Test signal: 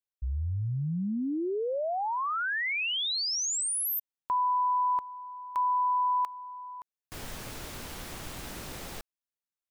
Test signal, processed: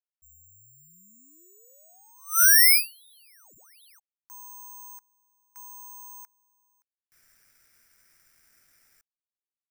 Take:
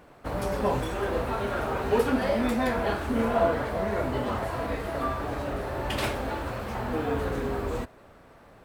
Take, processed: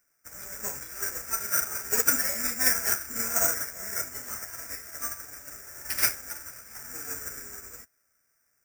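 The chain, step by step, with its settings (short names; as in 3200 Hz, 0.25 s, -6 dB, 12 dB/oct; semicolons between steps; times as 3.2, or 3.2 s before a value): band shelf 1800 Hz +16 dB 1.1 oct; careless resampling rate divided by 6×, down none, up zero stuff; upward expander 2.5:1, over -25 dBFS; gain -9 dB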